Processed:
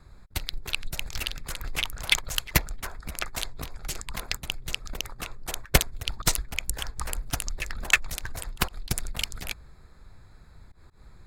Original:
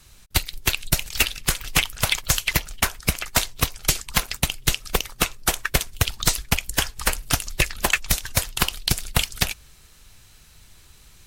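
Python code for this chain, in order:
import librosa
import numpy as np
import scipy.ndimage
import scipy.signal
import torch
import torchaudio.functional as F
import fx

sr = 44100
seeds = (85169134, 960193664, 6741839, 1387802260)

y = fx.wiener(x, sr, points=15)
y = fx.auto_swell(y, sr, attack_ms=111.0)
y = y * 10.0 ** (2.5 / 20.0)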